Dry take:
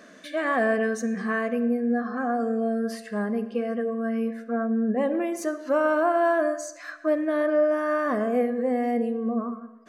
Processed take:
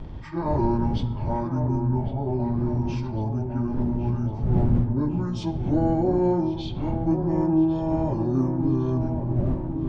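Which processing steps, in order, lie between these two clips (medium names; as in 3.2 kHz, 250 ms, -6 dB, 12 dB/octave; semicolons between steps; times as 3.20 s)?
frequency-domain pitch shifter -11 st; wind noise 130 Hz -31 dBFS; on a send: feedback echo behind a low-pass 1104 ms, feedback 57%, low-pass 2.2 kHz, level -7.5 dB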